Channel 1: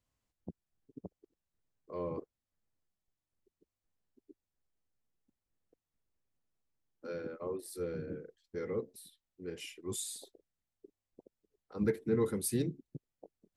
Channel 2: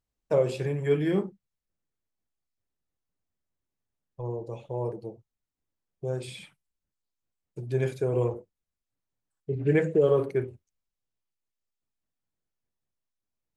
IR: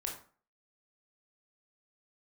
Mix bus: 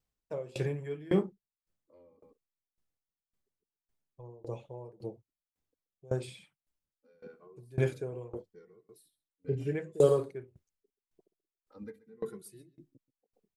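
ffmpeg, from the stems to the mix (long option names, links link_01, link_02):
-filter_complex "[0:a]equalizer=frequency=79:width_type=o:width=1.2:gain=-6,asplit=2[link_01][link_02];[link_02]adelay=2.2,afreqshift=-0.82[link_03];[link_01][link_03]amix=inputs=2:normalize=1,volume=-2.5dB,asplit=2[link_04][link_05];[link_05]volume=-14.5dB[link_06];[1:a]volume=2dB[link_07];[link_06]aecho=0:1:131:1[link_08];[link_04][link_07][link_08]amix=inputs=3:normalize=0,aeval=exprs='val(0)*pow(10,-25*if(lt(mod(1.8*n/s,1),2*abs(1.8)/1000),1-mod(1.8*n/s,1)/(2*abs(1.8)/1000),(mod(1.8*n/s,1)-2*abs(1.8)/1000)/(1-2*abs(1.8)/1000))/20)':channel_layout=same"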